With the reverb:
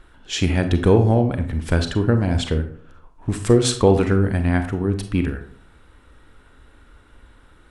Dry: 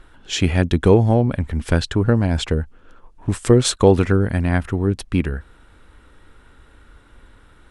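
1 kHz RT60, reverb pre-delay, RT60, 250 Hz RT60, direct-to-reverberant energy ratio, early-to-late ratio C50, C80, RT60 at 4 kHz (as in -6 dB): 0.50 s, 32 ms, 0.55 s, 0.65 s, 7.5 dB, 10.0 dB, 14.0 dB, 0.35 s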